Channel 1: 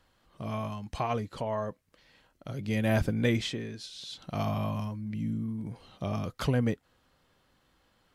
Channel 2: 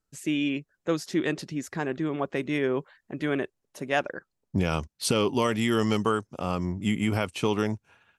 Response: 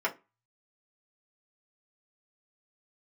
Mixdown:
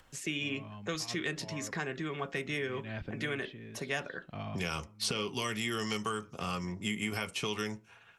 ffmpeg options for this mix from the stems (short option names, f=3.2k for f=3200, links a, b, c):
-filter_complex "[0:a]lowpass=f=3.2k:w=0.5412,lowpass=f=3.2k:w=1.3066,volume=-7dB,afade=t=out:st=4.62:d=0.31:silence=0.473151[a];[1:a]highshelf=f=9.6k:g=-9,volume=-2.5dB,asplit=3[b][c][d];[c]volume=-10dB[e];[d]apad=whole_len=359204[f];[a][f]sidechaincompress=threshold=-31dB:ratio=8:attack=8.3:release=503[g];[2:a]atrim=start_sample=2205[h];[e][h]afir=irnorm=-1:irlink=0[i];[g][b][i]amix=inputs=3:normalize=0,acrossover=split=240|1500|6800[j][k][l][m];[j]acompressor=threshold=-40dB:ratio=4[n];[k]acompressor=threshold=-42dB:ratio=4[o];[l]acompressor=threshold=-38dB:ratio=4[p];[m]acompressor=threshold=-55dB:ratio=4[q];[n][o][p][q]amix=inputs=4:normalize=0,highshelf=f=3.6k:g=8.5,acompressor=mode=upward:threshold=-52dB:ratio=2.5"